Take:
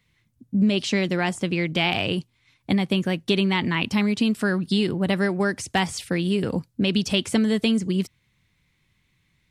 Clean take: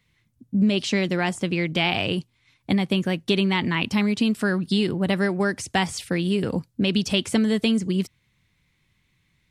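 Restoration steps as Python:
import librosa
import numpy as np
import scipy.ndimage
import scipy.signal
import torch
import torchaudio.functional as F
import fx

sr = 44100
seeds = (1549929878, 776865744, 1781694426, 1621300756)

y = fx.fix_declip(x, sr, threshold_db=-10.0)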